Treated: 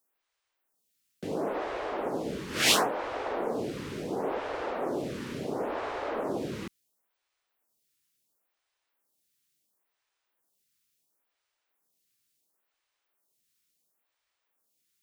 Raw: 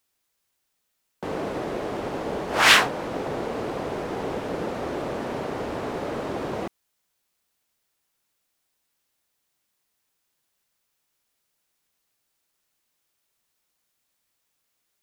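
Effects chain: bass shelf 100 Hz -6.5 dB; lamp-driven phase shifter 0.72 Hz

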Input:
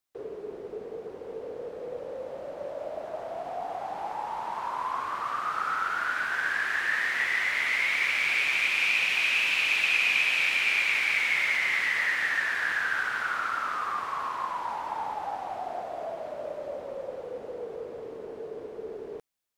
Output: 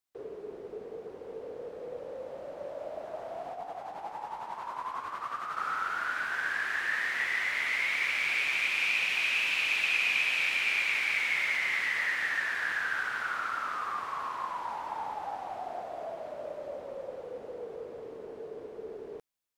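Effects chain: 3.52–5.57 s: tremolo 11 Hz, depth 52%; trim -3.5 dB

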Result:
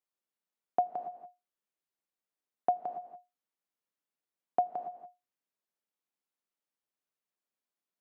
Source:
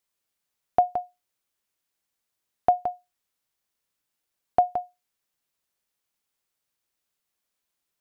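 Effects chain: high-pass 170 Hz 24 dB/octave; treble shelf 2 kHz -9 dB; gated-style reverb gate 310 ms rising, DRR 11.5 dB; trim -7 dB

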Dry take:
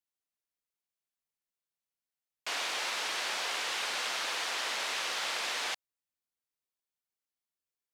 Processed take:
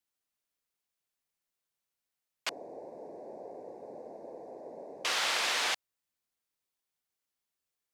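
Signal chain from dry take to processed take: 2.49–5.05 s: inverse Chebyshev low-pass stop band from 1.2 kHz, stop band 40 dB; trim +4 dB

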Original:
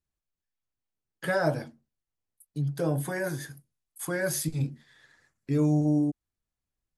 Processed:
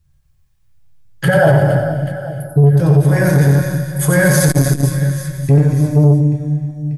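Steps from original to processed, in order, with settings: 1.28–2.64 s: resonances exaggerated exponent 2; resonant low shelf 180 Hz +12.5 dB, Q 3; compression 8:1, threshold -23 dBFS, peak gain reduction 16 dB; peaking EQ 310 Hz +5.5 dB 0.22 oct; feedback comb 270 Hz, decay 0.53 s, harmonics all, mix 70%; reverse bouncing-ball echo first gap 90 ms, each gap 1.6×, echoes 5; gated-style reverb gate 360 ms flat, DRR 3 dB; loudness maximiser +25 dB; transformer saturation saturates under 210 Hz

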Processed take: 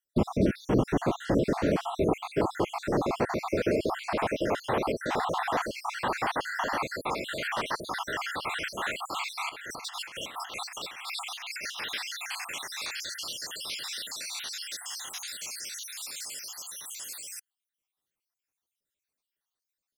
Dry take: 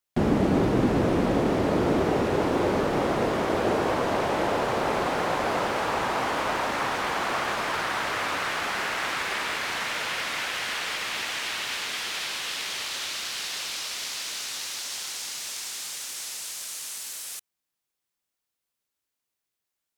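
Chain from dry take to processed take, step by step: random holes in the spectrogram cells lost 64%; 9.49–11.79 s: compressor with a negative ratio -38 dBFS, ratio -0.5

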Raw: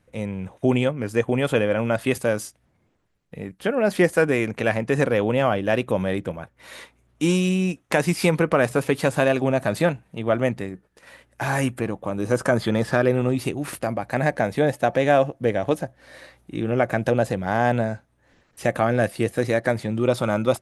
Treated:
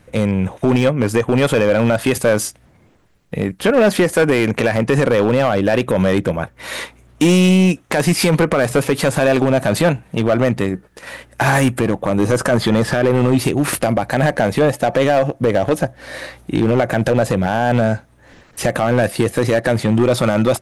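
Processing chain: in parallel at +1 dB: compression, threshold -28 dBFS, peak gain reduction 15 dB; on the sum: peak limiter -11 dBFS, peak gain reduction 9 dB; hard clipper -16 dBFS, distortion -15 dB; trim +8 dB

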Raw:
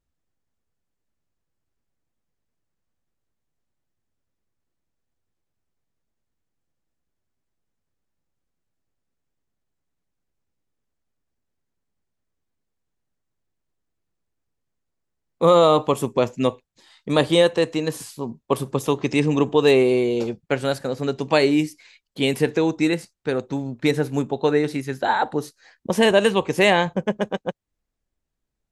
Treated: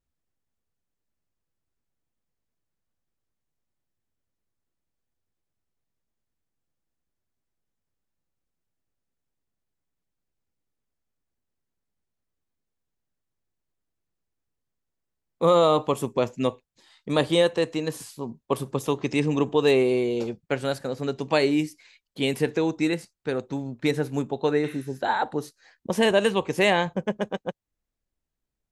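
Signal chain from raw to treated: spectral replace 24.68–24.93 s, 1–9.2 kHz both; trim -4 dB

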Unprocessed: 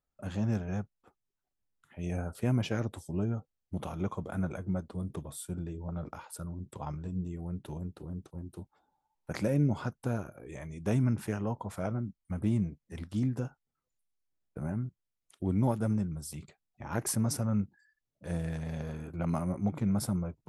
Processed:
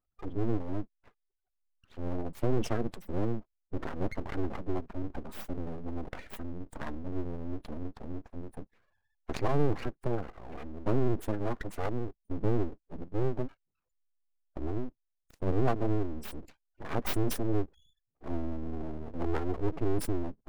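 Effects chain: spectral gate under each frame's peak -15 dB strong; full-wave rectifier; trim +4 dB

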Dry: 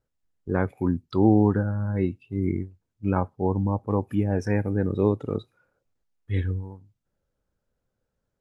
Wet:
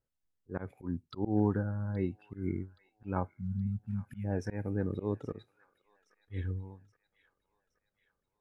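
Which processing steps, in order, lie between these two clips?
spectral selection erased 3.32–4.24 s, 250–1300 Hz; slow attack 133 ms; feedback echo behind a high-pass 822 ms, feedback 53%, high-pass 1.5 kHz, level -16.5 dB; trim -8 dB

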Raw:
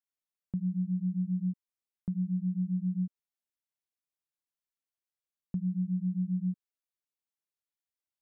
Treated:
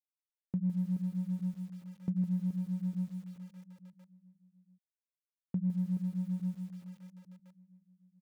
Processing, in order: local Wiener filter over 41 samples; gate with hold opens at -31 dBFS; feedback delay 427 ms, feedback 42%, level -11 dB; bit-crushed delay 158 ms, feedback 35%, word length 9-bit, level -11 dB

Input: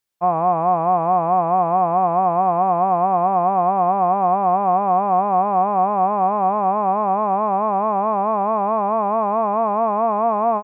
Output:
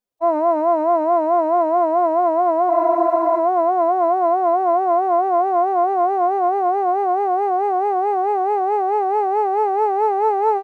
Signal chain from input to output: FFT filter 150 Hz 0 dB, 320 Hz +7 dB, 670 Hz +4 dB, 1.8 kHz -7 dB; in parallel at -11 dB: saturation -40 dBFS, distortion -3 dB; on the sum: formant-preserving pitch shift +11 st; spectral freeze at 2.72 s, 0.67 s; trim -2 dB

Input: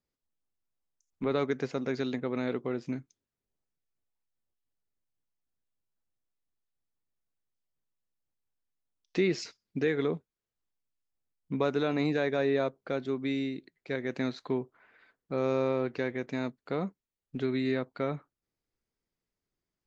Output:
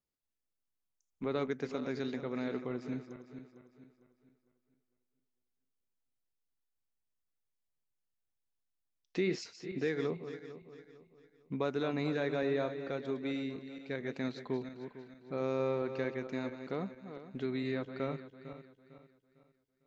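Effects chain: backward echo that repeats 226 ms, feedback 58%, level -10 dB; trim -5.5 dB

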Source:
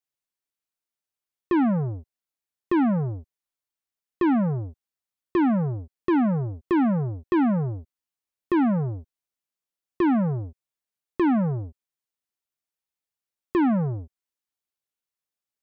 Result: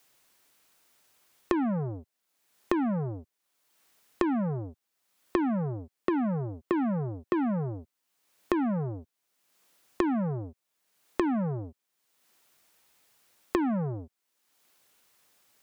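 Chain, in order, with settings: bass shelf 120 Hz -8 dB; three bands compressed up and down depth 100%; trim -4 dB

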